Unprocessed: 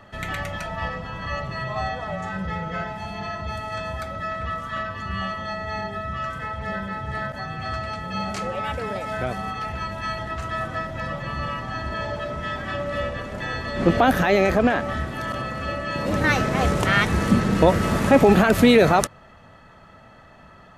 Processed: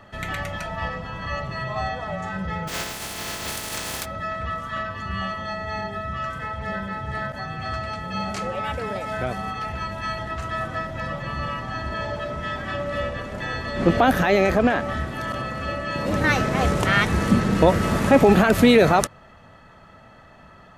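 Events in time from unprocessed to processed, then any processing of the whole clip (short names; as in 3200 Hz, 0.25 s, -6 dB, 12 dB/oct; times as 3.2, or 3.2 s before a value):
2.67–4.04 spectral contrast lowered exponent 0.25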